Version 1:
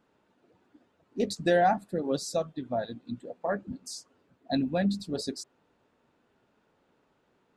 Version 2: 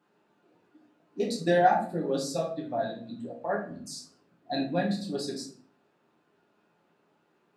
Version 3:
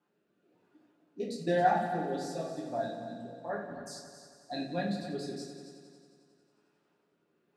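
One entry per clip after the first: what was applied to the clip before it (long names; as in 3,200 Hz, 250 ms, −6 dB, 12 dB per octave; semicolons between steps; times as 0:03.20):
high-pass filter 150 Hz 12 dB per octave; convolution reverb RT60 0.50 s, pre-delay 6 ms, DRR −3.5 dB; level −4 dB
rotating-speaker cabinet horn 1 Hz; on a send: echo machine with several playback heads 90 ms, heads all three, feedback 55%, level −14 dB; on the sum: level −4 dB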